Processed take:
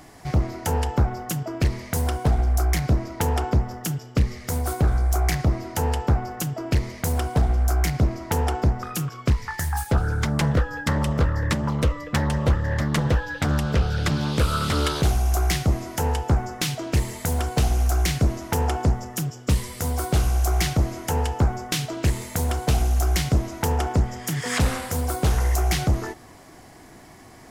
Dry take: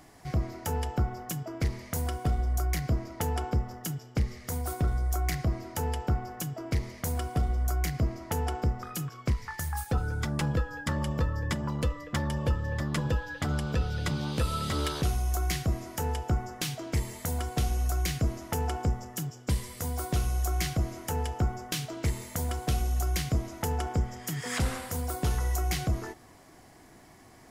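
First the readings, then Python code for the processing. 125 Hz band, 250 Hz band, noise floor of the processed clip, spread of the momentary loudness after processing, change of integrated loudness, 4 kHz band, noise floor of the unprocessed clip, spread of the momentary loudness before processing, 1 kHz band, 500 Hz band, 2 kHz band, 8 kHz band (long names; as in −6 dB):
+7.5 dB, +7.5 dB, −46 dBFS, 5 LU, +7.5 dB, +7.0 dB, −53 dBFS, 4 LU, +7.5 dB, +7.5 dB, +7.5 dB, +6.5 dB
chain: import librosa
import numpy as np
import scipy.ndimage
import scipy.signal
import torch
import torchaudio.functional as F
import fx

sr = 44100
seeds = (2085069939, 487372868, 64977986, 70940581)

y = fx.doppler_dist(x, sr, depth_ms=0.44)
y = y * librosa.db_to_amplitude(7.5)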